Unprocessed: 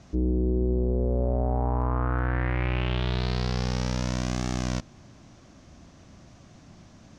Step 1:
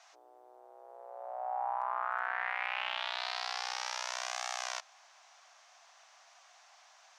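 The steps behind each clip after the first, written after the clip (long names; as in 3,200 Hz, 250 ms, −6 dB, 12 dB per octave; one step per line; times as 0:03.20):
elliptic high-pass filter 740 Hz, stop band 70 dB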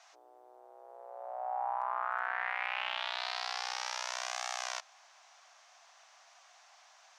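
no processing that can be heard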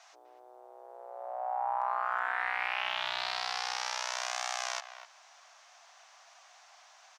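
far-end echo of a speakerphone 250 ms, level −11 dB
level +2.5 dB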